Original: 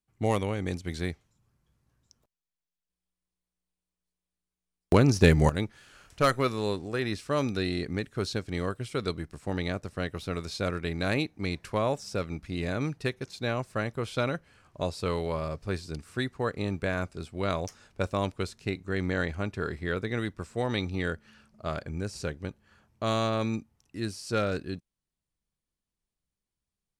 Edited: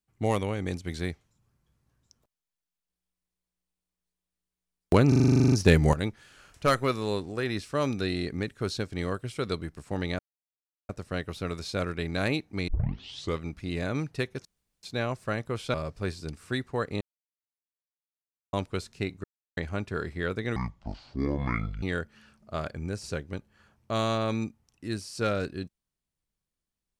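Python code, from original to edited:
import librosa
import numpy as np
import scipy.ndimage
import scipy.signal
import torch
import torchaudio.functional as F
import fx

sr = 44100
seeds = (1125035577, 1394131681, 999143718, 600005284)

y = fx.edit(x, sr, fx.stutter(start_s=5.08, slice_s=0.04, count=12),
    fx.insert_silence(at_s=9.75, length_s=0.7),
    fx.tape_start(start_s=11.54, length_s=0.73),
    fx.insert_room_tone(at_s=13.31, length_s=0.38),
    fx.cut(start_s=14.22, length_s=1.18),
    fx.silence(start_s=16.67, length_s=1.52),
    fx.silence(start_s=18.9, length_s=0.33),
    fx.speed_span(start_s=20.22, length_s=0.72, speed=0.57), tone=tone)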